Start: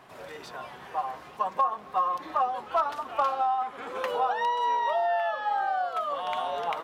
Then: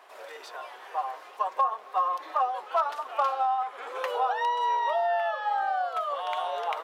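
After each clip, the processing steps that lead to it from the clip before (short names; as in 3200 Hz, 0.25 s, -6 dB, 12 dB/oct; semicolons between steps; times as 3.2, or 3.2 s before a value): HPF 430 Hz 24 dB/oct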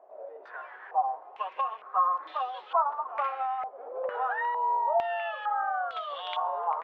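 stepped low-pass 2.2 Hz 630–3500 Hz; gain -6.5 dB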